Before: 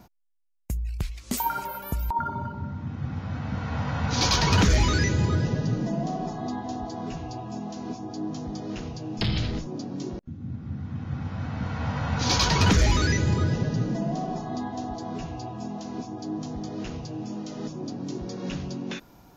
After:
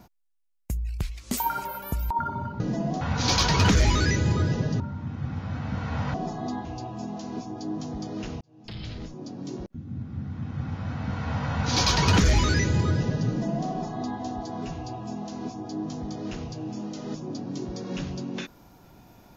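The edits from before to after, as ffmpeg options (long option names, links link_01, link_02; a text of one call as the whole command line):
ffmpeg -i in.wav -filter_complex "[0:a]asplit=7[link_01][link_02][link_03][link_04][link_05][link_06][link_07];[link_01]atrim=end=2.602[link_08];[link_02]atrim=start=5.728:end=6.142[link_09];[link_03]atrim=start=3.938:end=5.732[link_10];[link_04]atrim=start=2.598:end=3.942[link_11];[link_05]atrim=start=6.138:end=6.652[link_12];[link_06]atrim=start=7.178:end=8.94,asetpts=PTS-STARTPTS,afade=type=out:start_time=1.758:duration=0.004:curve=hsin[link_13];[link_07]atrim=start=8.94,asetpts=PTS-STARTPTS,afade=type=in:duration=1.4[link_14];[link_08][link_09]acrossfade=duration=0.004:curve1=hsin:curve2=hsin[link_15];[link_15][link_10]acrossfade=duration=0.004:curve1=hsin:curve2=hsin[link_16];[link_16][link_11]acrossfade=duration=0.004:curve1=hsin:curve2=hsin[link_17];[link_17][link_12]acrossfade=duration=0.004:curve1=hsin:curve2=hsin[link_18];[link_13][link_14]concat=n=2:v=0:a=1[link_19];[link_18][link_19]acrossfade=duration=0.004:curve1=hsin:curve2=hsin" out.wav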